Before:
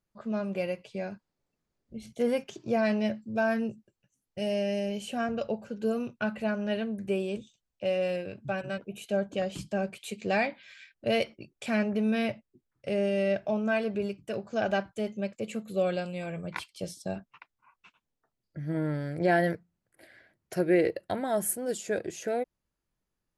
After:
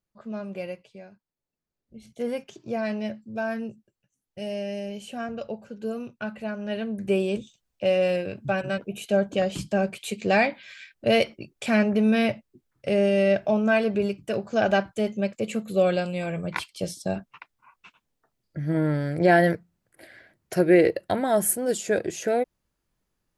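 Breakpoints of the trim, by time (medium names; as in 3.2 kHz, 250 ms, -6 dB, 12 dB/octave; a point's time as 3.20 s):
0.73 s -2.5 dB
1.10 s -12 dB
2.24 s -2 dB
6.57 s -2 dB
7.15 s +6.5 dB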